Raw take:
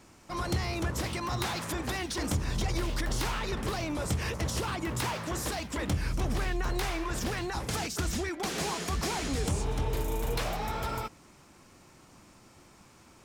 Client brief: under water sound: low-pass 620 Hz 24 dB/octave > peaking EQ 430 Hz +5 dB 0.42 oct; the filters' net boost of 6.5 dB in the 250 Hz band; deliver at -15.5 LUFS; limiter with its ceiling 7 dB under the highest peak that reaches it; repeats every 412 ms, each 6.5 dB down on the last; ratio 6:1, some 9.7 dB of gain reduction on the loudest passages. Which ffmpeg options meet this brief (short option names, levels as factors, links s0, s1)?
-af "equalizer=f=250:t=o:g=8,acompressor=threshold=0.0224:ratio=6,alimiter=level_in=2:limit=0.0631:level=0:latency=1,volume=0.501,lowpass=f=620:w=0.5412,lowpass=f=620:w=1.3066,equalizer=f=430:t=o:w=0.42:g=5,aecho=1:1:412|824|1236|1648|2060|2472:0.473|0.222|0.105|0.0491|0.0231|0.0109,volume=15"